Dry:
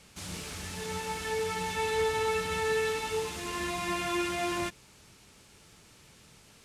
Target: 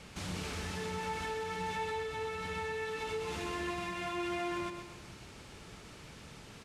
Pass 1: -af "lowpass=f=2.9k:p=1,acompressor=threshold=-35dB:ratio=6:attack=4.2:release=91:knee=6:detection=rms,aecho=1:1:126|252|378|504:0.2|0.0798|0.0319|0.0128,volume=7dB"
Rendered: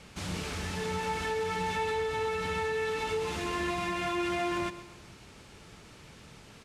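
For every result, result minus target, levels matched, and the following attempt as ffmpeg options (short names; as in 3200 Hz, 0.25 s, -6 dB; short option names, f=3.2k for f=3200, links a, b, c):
compressor: peak gain reduction -6 dB; echo-to-direct -7 dB
-af "lowpass=f=2.9k:p=1,acompressor=threshold=-42.5dB:ratio=6:attack=4.2:release=91:knee=6:detection=rms,aecho=1:1:126|252|378|504:0.2|0.0798|0.0319|0.0128,volume=7dB"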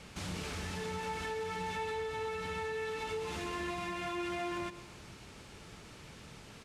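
echo-to-direct -7 dB
-af "lowpass=f=2.9k:p=1,acompressor=threshold=-42.5dB:ratio=6:attack=4.2:release=91:knee=6:detection=rms,aecho=1:1:126|252|378|504|630:0.447|0.179|0.0715|0.0286|0.0114,volume=7dB"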